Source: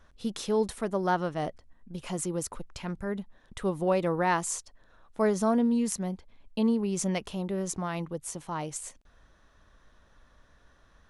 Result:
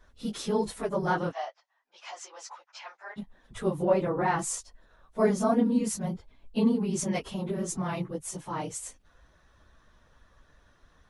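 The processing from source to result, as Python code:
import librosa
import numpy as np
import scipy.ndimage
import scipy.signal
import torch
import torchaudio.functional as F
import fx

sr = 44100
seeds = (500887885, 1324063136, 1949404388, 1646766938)

y = fx.phase_scramble(x, sr, seeds[0], window_ms=50)
y = fx.ellip_bandpass(y, sr, low_hz=740.0, high_hz=6000.0, order=3, stop_db=60, at=(1.31, 3.16), fade=0.02)
y = fx.high_shelf(y, sr, hz=3300.0, db=-10.0, at=(3.85, 4.39))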